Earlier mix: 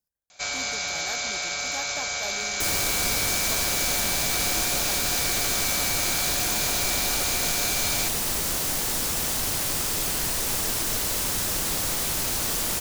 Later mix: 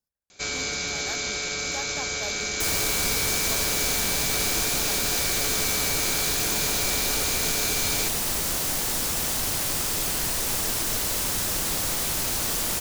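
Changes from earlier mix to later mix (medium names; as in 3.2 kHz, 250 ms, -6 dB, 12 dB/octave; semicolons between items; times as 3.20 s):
speech: add treble shelf 8.3 kHz -5 dB; first sound: add resonant low shelf 520 Hz +7 dB, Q 3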